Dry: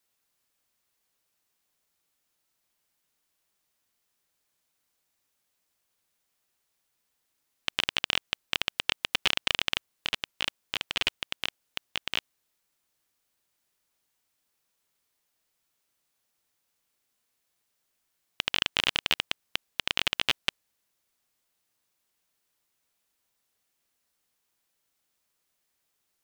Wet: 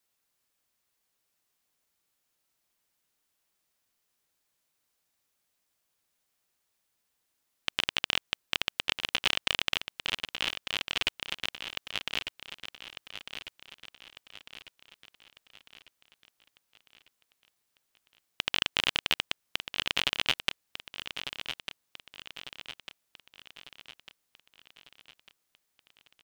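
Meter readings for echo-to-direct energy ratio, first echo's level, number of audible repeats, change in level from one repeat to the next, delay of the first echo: -8.5 dB, -9.5 dB, 5, -6.0 dB, 1.199 s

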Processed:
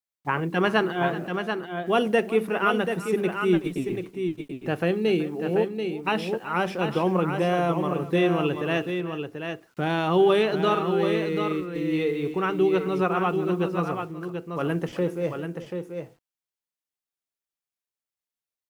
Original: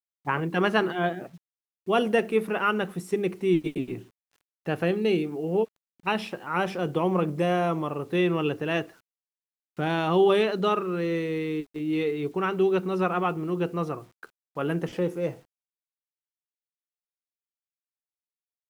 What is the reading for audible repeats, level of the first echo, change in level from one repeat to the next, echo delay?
2, -16.5 dB, +10.0 dB, 0.375 s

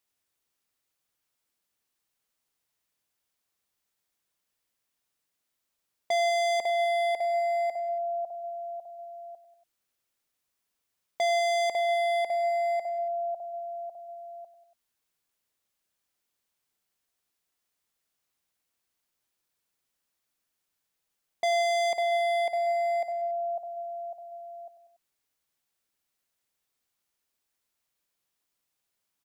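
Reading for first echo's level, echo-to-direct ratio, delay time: -12.0 dB, -10.5 dB, 95 ms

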